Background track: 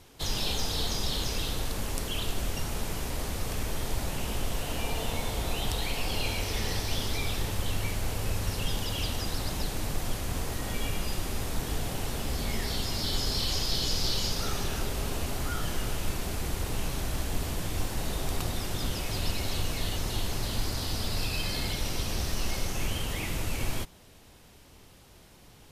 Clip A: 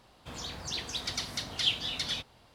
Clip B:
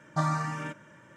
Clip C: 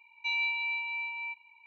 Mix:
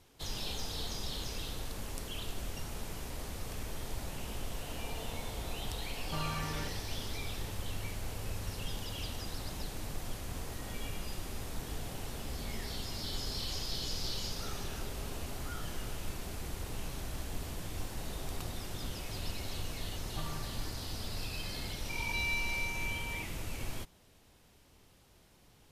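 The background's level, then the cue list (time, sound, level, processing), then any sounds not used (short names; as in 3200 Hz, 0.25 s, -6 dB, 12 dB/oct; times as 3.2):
background track -8.5 dB
5.96 add B -6 dB + limiter -24 dBFS
20 add B -17.5 dB
21.89 add C -4.5 dB + backwards sustainer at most 29 dB/s
not used: A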